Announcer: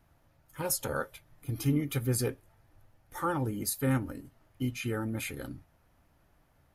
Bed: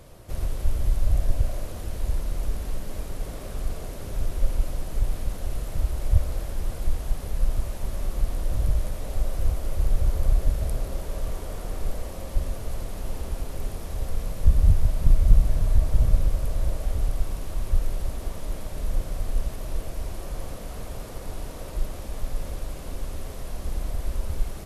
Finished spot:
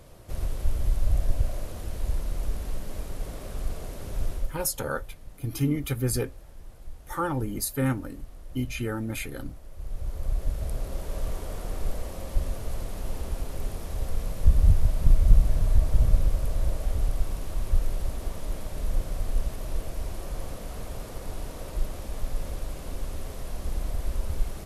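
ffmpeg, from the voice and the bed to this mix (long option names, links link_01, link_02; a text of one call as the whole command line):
ffmpeg -i stem1.wav -i stem2.wav -filter_complex "[0:a]adelay=3950,volume=2.5dB[link_01];[1:a]volume=14dB,afade=type=out:start_time=4.31:duration=0.24:silence=0.177828,afade=type=in:start_time=9.73:duration=1.48:silence=0.158489[link_02];[link_01][link_02]amix=inputs=2:normalize=0" out.wav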